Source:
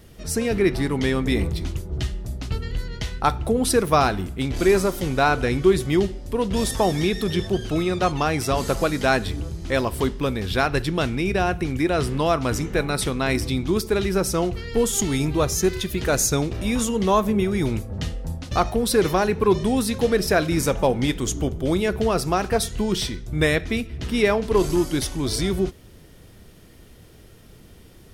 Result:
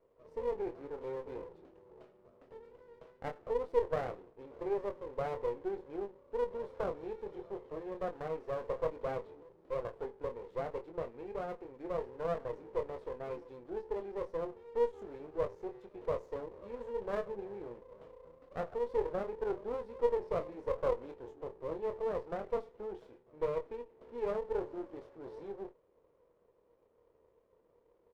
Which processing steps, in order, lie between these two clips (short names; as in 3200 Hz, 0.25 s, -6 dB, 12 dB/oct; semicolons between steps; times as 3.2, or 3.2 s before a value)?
ladder band-pass 540 Hz, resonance 70%; doubler 25 ms -6 dB; running maximum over 17 samples; gain -8 dB